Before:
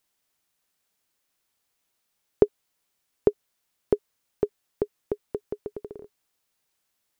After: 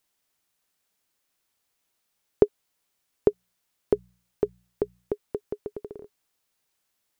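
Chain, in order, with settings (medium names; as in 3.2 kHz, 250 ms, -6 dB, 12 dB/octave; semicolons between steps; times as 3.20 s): 3.28–5.13 s: de-hum 60.14 Hz, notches 3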